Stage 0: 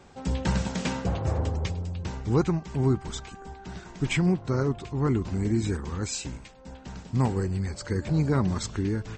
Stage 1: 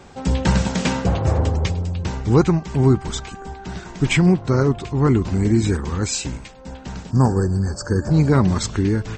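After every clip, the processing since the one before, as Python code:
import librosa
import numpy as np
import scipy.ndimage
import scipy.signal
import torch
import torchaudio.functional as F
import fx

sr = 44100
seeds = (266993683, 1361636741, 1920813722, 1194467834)

y = fx.spec_box(x, sr, start_s=7.11, length_s=1.0, low_hz=1800.0, high_hz=4400.0, gain_db=-22)
y = F.gain(torch.from_numpy(y), 8.5).numpy()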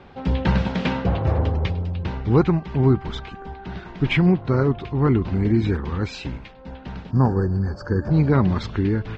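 y = scipy.signal.sosfilt(scipy.signal.butter(4, 3800.0, 'lowpass', fs=sr, output='sos'), x)
y = F.gain(torch.from_numpy(y), -2.0).numpy()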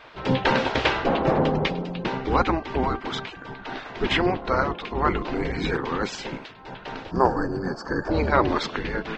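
y = fx.spec_gate(x, sr, threshold_db=-10, keep='weak')
y = F.gain(torch.from_numpy(y), 6.5).numpy()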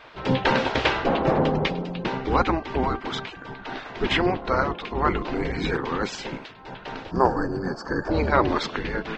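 y = x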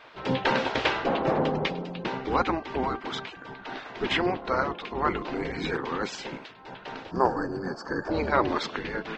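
y = fx.low_shelf(x, sr, hz=100.0, db=-10.5)
y = F.gain(torch.from_numpy(y), -3.0).numpy()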